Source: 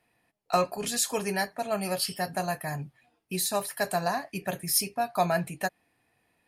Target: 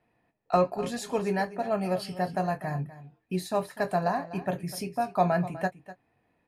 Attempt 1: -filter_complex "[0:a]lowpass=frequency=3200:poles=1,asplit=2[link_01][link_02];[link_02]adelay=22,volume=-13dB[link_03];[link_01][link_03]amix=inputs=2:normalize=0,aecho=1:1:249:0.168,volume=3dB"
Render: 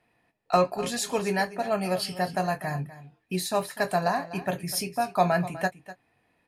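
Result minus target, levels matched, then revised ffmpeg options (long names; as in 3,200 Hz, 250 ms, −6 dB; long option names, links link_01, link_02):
4,000 Hz band +6.5 dB
-filter_complex "[0:a]lowpass=frequency=1000:poles=1,asplit=2[link_01][link_02];[link_02]adelay=22,volume=-13dB[link_03];[link_01][link_03]amix=inputs=2:normalize=0,aecho=1:1:249:0.168,volume=3dB"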